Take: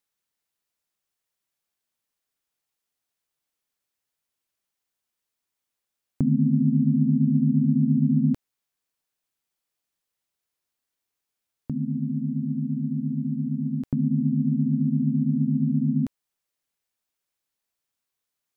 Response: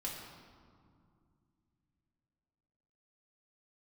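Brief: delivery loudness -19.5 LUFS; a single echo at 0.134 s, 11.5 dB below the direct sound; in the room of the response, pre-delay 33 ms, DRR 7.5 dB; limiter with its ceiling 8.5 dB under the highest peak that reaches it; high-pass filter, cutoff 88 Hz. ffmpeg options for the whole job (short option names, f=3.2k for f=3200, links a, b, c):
-filter_complex "[0:a]highpass=88,alimiter=limit=-19.5dB:level=0:latency=1,aecho=1:1:134:0.266,asplit=2[a][b];[1:a]atrim=start_sample=2205,adelay=33[c];[b][c]afir=irnorm=-1:irlink=0,volume=-8dB[d];[a][d]amix=inputs=2:normalize=0,volume=8dB"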